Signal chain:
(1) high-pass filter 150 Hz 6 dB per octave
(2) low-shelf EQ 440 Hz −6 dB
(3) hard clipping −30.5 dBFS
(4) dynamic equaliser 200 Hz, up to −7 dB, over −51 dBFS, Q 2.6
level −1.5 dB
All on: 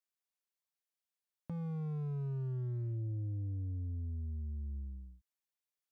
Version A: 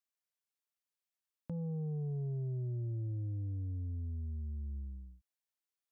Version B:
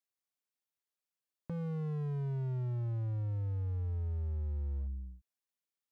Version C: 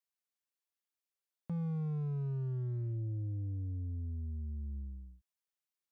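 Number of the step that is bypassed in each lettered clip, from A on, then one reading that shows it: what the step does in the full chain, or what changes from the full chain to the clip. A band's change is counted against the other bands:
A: 3, distortion level −25 dB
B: 2, change in crest factor −2.0 dB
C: 4, change in momentary loudness spread +2 LU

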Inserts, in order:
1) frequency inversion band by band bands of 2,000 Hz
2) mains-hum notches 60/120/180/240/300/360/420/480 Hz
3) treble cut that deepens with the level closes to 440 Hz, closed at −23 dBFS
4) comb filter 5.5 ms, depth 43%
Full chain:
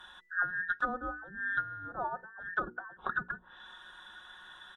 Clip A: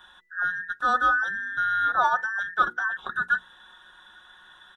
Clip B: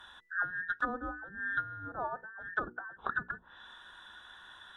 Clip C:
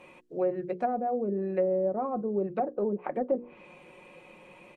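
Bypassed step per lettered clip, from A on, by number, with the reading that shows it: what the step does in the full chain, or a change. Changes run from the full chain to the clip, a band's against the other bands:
3, 250 Hz band −9.5 dB
4, 250 Hz band +1.5 dB
1, 2 kHz band −31.0 dB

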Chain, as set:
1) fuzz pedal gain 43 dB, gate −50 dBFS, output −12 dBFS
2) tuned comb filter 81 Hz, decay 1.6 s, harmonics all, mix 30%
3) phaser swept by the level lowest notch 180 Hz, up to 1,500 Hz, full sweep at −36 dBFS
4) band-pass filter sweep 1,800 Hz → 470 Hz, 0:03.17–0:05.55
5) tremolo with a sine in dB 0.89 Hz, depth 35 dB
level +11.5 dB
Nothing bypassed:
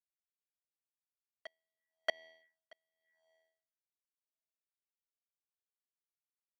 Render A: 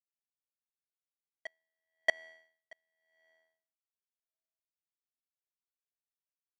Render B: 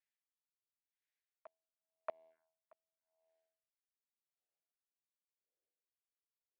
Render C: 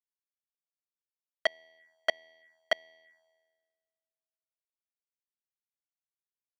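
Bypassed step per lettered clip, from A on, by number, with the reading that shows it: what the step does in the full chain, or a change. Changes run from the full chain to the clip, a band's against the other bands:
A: 3, 2 kHz band +6.0 dB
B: 1, distortion level −7 dB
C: 5, change in momentary loudness spread −17 LU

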